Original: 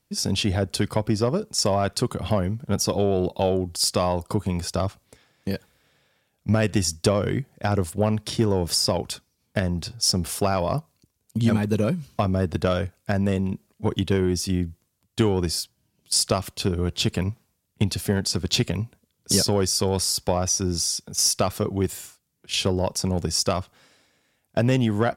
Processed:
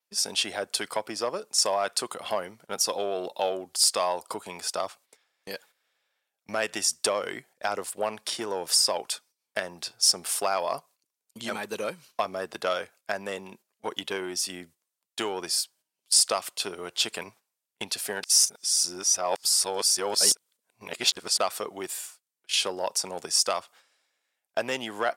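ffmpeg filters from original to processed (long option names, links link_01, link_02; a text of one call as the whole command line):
ffmpeg -i in.wav -filter_complex "[0:a]asplit=3[link_01][link_02][link_03];[link_01]atrim=end=18.232[link_04];[link_02]atrim=start=18.228:end=21.402,asetpts=PTS-STARTPTS,areverse[link_05];[link_03]atrim=start=21.398[link_06];[link_04][link_05]acrossfade=duration=0.004:curve1=hsin:curve2=hsin[link_07];[link_07][link_06]acrossfade=duration=0.004:curve1=hsin:curve2=hsin,highpass=660,agate=range=-10dB:threshold=-53dB:ratio=16:detection=peak,adynamicequalizer=threshold=0.00501:dfrequency=8600:dqfactor=4.4:tfrequency=8600:tqfactor=4.4:attack=5:release=100:ratio=0.375:range=3:mode=boostabove:tftype=bell" out.wav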